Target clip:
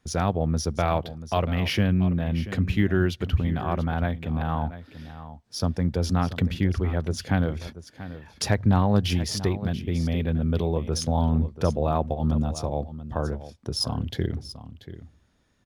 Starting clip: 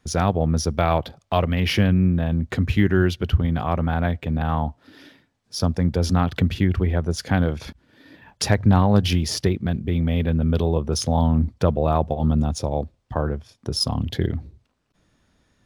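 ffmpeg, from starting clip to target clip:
-af "aecho=1:1:685:0.2,volume=-4dB"

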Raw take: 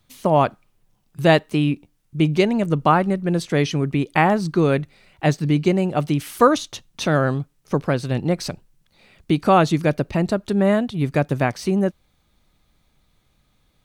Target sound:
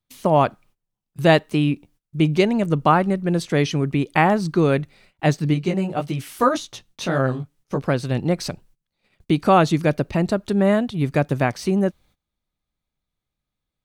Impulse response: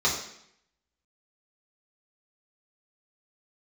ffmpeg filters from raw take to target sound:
-filter_complex "[0:a]agate=range=-20dB:threshold=-50dB:ratio=16:detection=peak,asplit=3[a][b][c];[a]afade=t=out:st=5.53:d=0.02[d];[b]flanger=delay=15:depth=5.5:speed=1.8,afade=t=in:st=5.53:d=0.02,afade=t=out:st=7.81:d=0.02[e];[c]afade=t=in:st=7.81:d=0.02[f];[d][e][f]amix=inputs=3:normalize=0"

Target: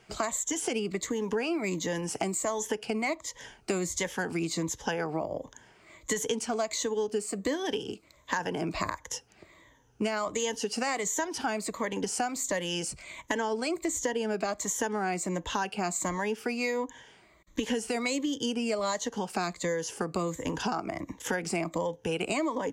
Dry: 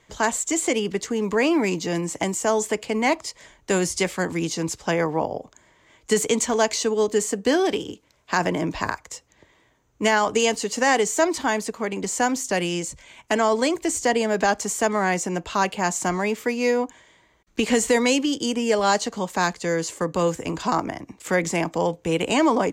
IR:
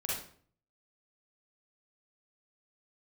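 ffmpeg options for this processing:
-af "afftfilt=real='re*pow(10,11/40*sin(2*PI*(1.1*log(max(b,1)*sr/1024/100)/log(2)-(-1.4)*(pts-256)/sr)))':imag='im*pow(10,11/40*sin(2*PI*(1.1*log(max(b,1)*sr/1024/100)/log(2)-(-1.4)*(pts-256)/sr)))':win_size=1024:overlap=0.75,acompressor=threshold=-28dB:ratio=6"

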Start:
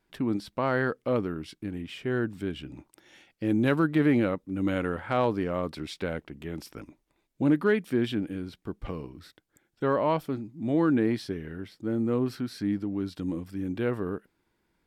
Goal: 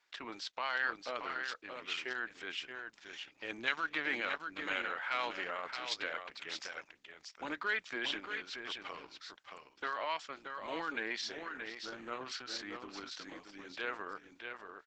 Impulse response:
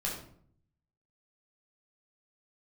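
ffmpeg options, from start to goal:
-filter_complex "[0:a]highpass=1.2k,asplit=3[a][b][c];[a]afade=t=out:st=8.12:d=0.02[d];[b]highshelf=f=2.5k:g=3,afade=t=in:st=8.12:d=0.02,afade=t=out:st=9.08:d=0.02[e];[c]afade=t=in:st=9.08:d=0.02[f];[d][e][f]amix=inputs=3:normalize=0,acrossover=split=1900[g][h];[g]alimiter=level_in=9.5dB:limit=-24dB:level=0:latency=1:release=90,volume=-9.5dB[i];[i][h]amix=inputs=2:normalize=0,asplit=3[j][k][l];[j]afade=t=out:st=11.25:d=0.02[m];[k]asplit=2[n][o];[o]adelay=30,volume=-10.5dB[p];[n][p]amix=inputs=2:normalize=0,afade=t=in:st=11.25:d=0.02,afade=t=out:st=12.42:d=0.02[q];[l]afade=t=in:st=12.42:d=0.02[r];[m][q][r]amix=inputs=3:normalize=0,asplit=2[s][t];[t]aecho=0:1:627:0.473[u];[s][u]amix=inputs=2:normalize=0,aresample=16000,aresample=44100,volume=4.5dB" -ar 48000 -c:a libopus -b:a 10k

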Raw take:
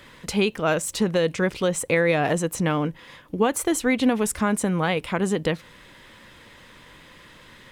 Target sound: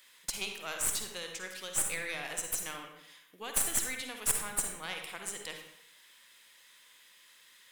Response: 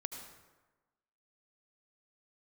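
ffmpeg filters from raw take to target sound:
-filter_complex "[0:a]aderivative,aeval=exprs='0.251*(cos(1*acos(clip(val(0)/0.251,-1,1)))-cos(1*PI/2))+0.126*(cos(2*acos(clip(val(0)/0.251,-1,1)))-cos(2*PI/2))+0.01*(cos(6*acos(clip(val(0)/0.251,-1,1)))-cos(6*PI/2))':c=same[a];[1:a]atrim=start_sample=2205,asetrate=70560,aresample=44100[b];[a][b]afir=irnorm=-1:irlink=0,volume=4dB"

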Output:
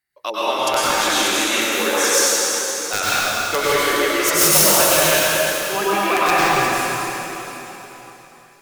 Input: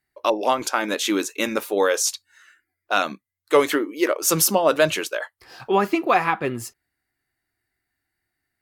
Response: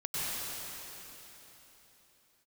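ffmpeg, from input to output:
-filter_complex "[0:a]tiltshelf=f=860:g=-5.5,aeval=exprs='(mod(1.68*val(0)+1,2)-1)/1.68':c=same[a];[1:a]atrim=start_sample=2205[b];[a][b]afir=irnorm=-1:irlink=0,volume=-2.5dB"

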